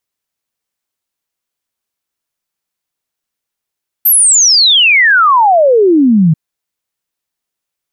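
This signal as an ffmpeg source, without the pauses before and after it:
-f lavfi -i "aevalsrc='0.596*clip(min(t,2.29-t)/0.01,0,1)*sin(2*PI*13000*2.29/log(150/13000)*(exp(log(150/13000)*t/2.29)-1))':d=2.29:s=44100"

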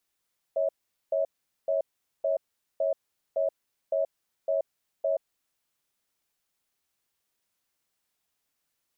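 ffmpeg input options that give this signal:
-f lavfi -i "aevalsrc='0.0501*(sin(2*PI*554*t)+sin(2*PI*644*t))*clip(min(mod(t,0.56),0.13-mod(t,0.56))/0.005,0,1)':d=4.98:s=44100"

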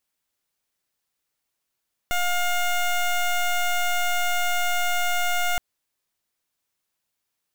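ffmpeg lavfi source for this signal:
-f lavfi -i "aevalsrc='0.075*(2*lt(mod(710*t,1),0.15)-1)':d=3.47:s=44100"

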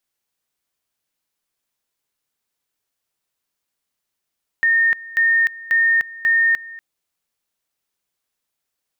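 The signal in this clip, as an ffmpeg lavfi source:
-f lavfi -i "aevalsrc='pow(10,(-12.5-20*gte(mod(t,0.54),0.3))/20)*sin(2*PI*1830*t)':d=2.16:s=44100"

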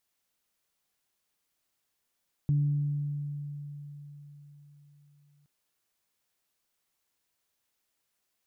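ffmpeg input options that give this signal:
-f lavfi -i "aevalsrc='0.0841*pow(10,-3*t/4.3)*sin(2*PI*145*t)+0.00944*pow(10,-3*t/2.05)*sin(2*PI*290*t)':d=2.97:s=44100"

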